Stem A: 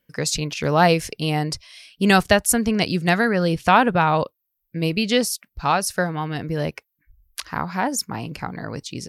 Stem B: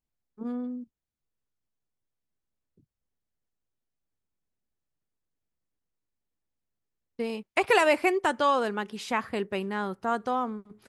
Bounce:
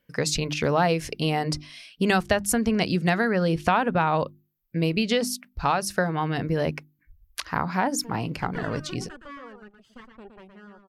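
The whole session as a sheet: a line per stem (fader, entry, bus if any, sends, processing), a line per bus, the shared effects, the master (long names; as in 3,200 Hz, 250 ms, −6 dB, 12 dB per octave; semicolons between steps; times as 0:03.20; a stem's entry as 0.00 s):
+2.0 dB, 0.00 s, no send, no echo send, high-shelf EQ 4,400 Hz −7 dB; mains-hum notches 50/100/150/200/250/300/350 Hz
−12.0 dB, 0.85 s, no send, echo send −7 dB, lower of the sound and its delayed copy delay 0.63 ms; reverb reduction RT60 1.1 s; low-pass filter 1,500 Hz 6 dB per octave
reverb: not used
echo: single-tap delay 116 ms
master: downward compressor 3 to 1, threshold −20 dBFS, peak gain reduction 9.5 dB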